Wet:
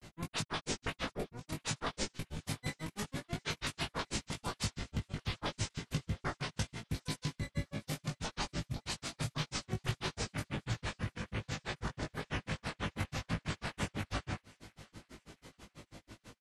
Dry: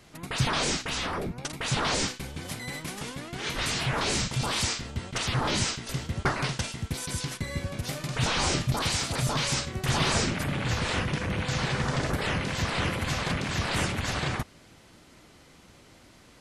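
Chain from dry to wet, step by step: bass shelf 250 Hz +4 dB; compression 4:1, threshold -34 dBFS, peak gain reduction 14 dB; granulator 104 ms, grains 6.1 per s, spray 22 ms, pitch spread up and down by 0 st; doubling 19 ms -3.5 dB; thinning echo 689 ms, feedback 32%, high-pass 1.1 kHz, level -23.5 dB; trim +1.5 dB

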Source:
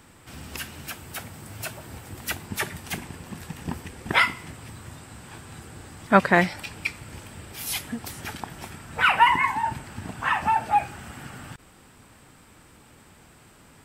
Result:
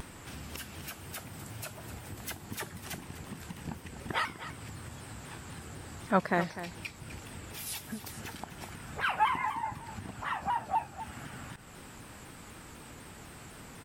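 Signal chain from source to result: dynamic bell 2.3 kHz, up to -6 dB, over -39 dBFS, Q 1.4; upward compressor, threshold -27 dBFS; delay 251 ms -12.5 dB; vibrato with a chosen wave saw down 4 Hz, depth 160 cents; trim -9 dB

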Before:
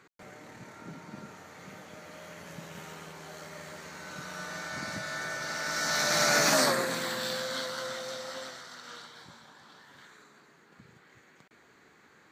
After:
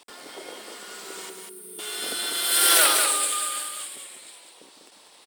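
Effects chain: time-frequency box 3.04–4.19 s, 210–3600 Hz -21 dB; speed mistake 33 rpm record played at 78 rpm; peaking EQ 8.4 kHz +13 dB 0.45 oct; on a send: delay 196 ms -5 dB; on the sum: trim +4.5 dB

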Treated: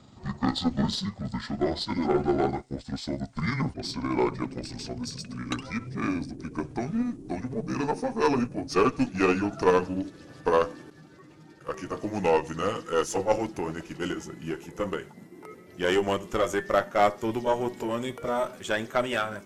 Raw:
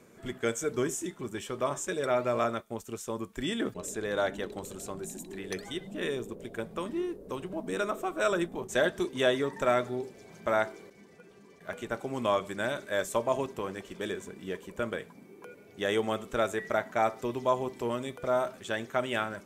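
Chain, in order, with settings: pitch bend over the whole clip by -10.5 st ending unshifted; Chebyshev shaper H 6 -22 dB, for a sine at -12.5 dBFS; trim +5.5 dB

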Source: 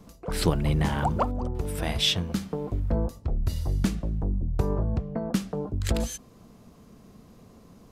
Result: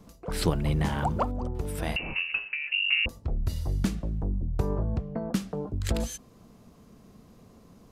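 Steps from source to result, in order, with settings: 1.96–3.06 s: frequency inversion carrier 2.8 kHz; trim -2 dB

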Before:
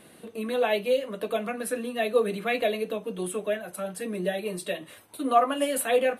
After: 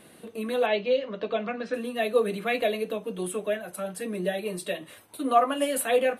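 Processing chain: 0.66–1.74 s: steep low-pass 5.5 kHz 36 dB/octave

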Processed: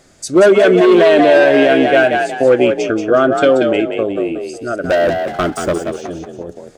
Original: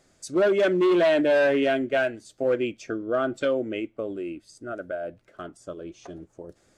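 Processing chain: 4.84–5.78 s: waveshaping leveller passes 3; frequency-shifting echo 182 ms, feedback 34%, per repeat +49 Hz, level -6 dB; loudness maximiser +14 dB; trim -1 dB

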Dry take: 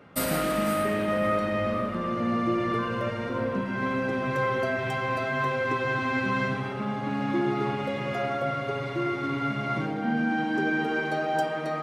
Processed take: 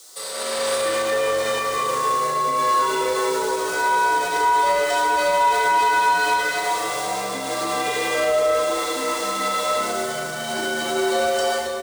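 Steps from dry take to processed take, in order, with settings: treble shelf 3.1 kHz -9.5 dB; reverberation RT60 1.2 s, pre-delay 29 ms, DRR -2.5 dB; added noise blue -49 dBFS; high-order bell 5.8 kHz +14 dB; peak limiter -17 dBFS, peak gain reduction 7.5 dB; high-pass 530 Hz 24 dB/octave; saturation -19.5 dBFS, distortion -22 dB; level rider gain up to 12.5 dB; doubling 39 ms -11 dB; filtered feedback delay 404 ms, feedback 63%, low-pass 900 Hz, level -9 dB; frequency shift -82 Hz; trim -4.5 dB

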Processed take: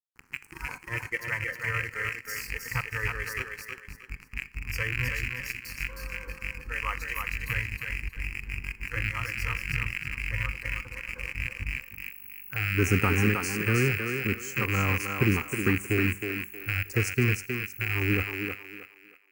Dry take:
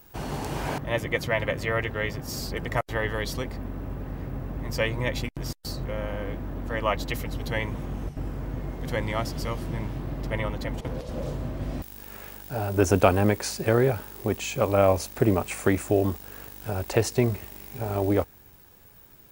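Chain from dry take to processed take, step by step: rattle on loud lows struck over -29 dBFS, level -11 dBFS; spectral noise reduction 18 dB; dynamic bell 900 Hz, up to -5 dB, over -38 dBFS, Q 0.85; in parallel at -0.5 dB: compression, threshold -38 dBFS, peak gain reduction 21.5 dB; on the sum: crossover distortion -40 dBFS; static phaser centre 1.5 kHz, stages 4; on a send: thinning echo 315 ms, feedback 32%, high-pass 280 Hz, level -4 dB; on the sum: Schroeder reverb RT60 0.45 s, combs from 28 ms, DRR 18 dB

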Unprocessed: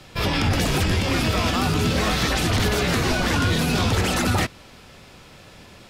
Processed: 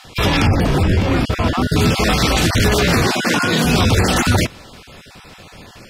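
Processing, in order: random holes in the spectrogram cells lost 20%; 0.47–1.72 s: treble shelf 2.2 kHz -12 dB; 3.07–3.65 s: high-pass 150 Hz 24 dB/octave; trim +7 dB

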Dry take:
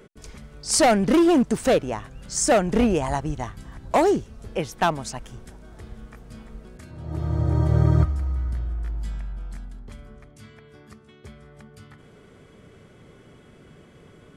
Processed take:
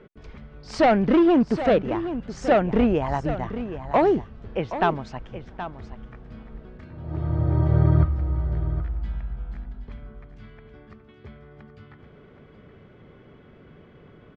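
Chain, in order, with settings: Bessel low-pass 2.6 kHz, order 4; delay 773 ms -11.5 dB

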